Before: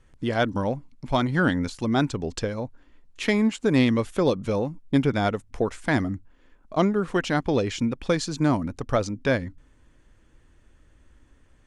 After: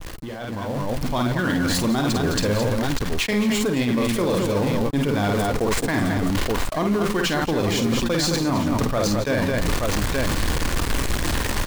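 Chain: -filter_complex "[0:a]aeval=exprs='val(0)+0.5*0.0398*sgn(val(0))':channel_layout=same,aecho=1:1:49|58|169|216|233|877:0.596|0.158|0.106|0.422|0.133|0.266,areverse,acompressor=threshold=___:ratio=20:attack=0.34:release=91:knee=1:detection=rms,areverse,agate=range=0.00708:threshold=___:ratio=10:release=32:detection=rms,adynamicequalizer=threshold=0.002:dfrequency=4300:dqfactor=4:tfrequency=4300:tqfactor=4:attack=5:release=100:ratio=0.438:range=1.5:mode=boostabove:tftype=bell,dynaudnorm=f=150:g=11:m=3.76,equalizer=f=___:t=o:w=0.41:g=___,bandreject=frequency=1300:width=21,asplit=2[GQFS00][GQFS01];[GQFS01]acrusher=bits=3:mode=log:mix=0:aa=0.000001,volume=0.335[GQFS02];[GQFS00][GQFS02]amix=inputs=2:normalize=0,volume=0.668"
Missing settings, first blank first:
0.0501, 0.0141, 1100, 3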